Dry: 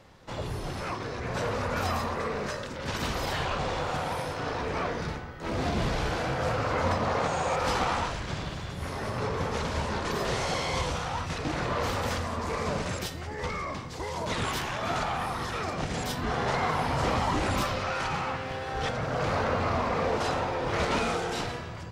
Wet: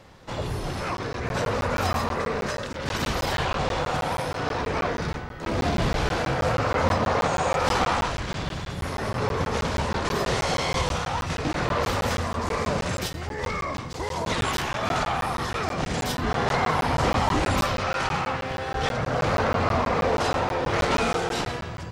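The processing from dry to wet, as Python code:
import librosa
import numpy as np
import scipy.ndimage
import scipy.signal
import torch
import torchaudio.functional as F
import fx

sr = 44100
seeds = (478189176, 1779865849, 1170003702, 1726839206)

y = fx.buffer_crackle(x, sr, first_s=0.97, period_s=0.16, block=512, kind='zero')
y = y * 10.0 ** (4.5 / 20.0)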